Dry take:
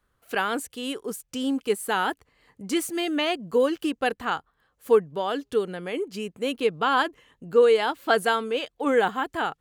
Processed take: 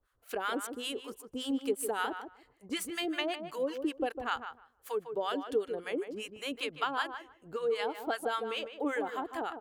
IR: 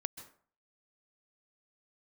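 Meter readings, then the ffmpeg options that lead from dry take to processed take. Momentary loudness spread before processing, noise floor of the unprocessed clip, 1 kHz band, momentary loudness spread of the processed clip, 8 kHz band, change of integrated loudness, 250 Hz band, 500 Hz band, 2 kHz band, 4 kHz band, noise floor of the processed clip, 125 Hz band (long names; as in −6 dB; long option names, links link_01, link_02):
9 LU, −73 dBFS, −9.5 dB, 8 LU, −6.0 dB, −10.0 dB, −8.5 dB, −11.0 dB, −9.5 dB, −7.0 dB, −69 dBFS, −14.5 dB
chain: -filter_complex "[0:a]equalizer=frequency=180:width_type=o:width=0.74:gain=-12.5,acompressor=threshold=-24dB:ratio=6,acrossover=split=780[link_01][link_02];[link_01]aeval=exprs='val(0)*(1-1/2+1/2*cos(2*PI*5.2*n/s))':channel_layout=same[link_03];[link_02]aeval=exprs='val(0)*(1-1/2-1/2*cos(2*PI*5.2*n/s))':channel_layout=same[link_04];[link_03][link_04]amix=inputs=2:normalize=0,asplit=2[link_05][link_06];[link_06]adelay=153,lowpass=frequency=1600:poles=1,volume=-7.5dB,asplit=2[link_07][link_08];[link_08]adelay=153,lowpass=frequency=1600:poles=1,volume=0.18,asplit=2[link_09][link_10];[link_10]adelay=153,lowpass=frequency=1600:poles=1,volume=0.18[link_11];[link_07][link_09][link_11]amix=inputs=3:normalize=0[link_12];[link_05][link_12]amix=inputs=2:normalize=0"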